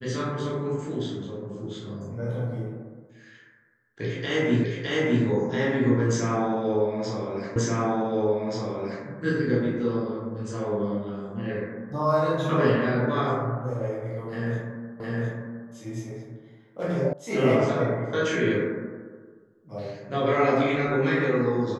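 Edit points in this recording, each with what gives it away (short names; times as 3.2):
4.64 repeat of the last 0.61 s
7.56 repeat of the last 1.48 s
15 repeat of the last 0.71 s
17.13 sound cut off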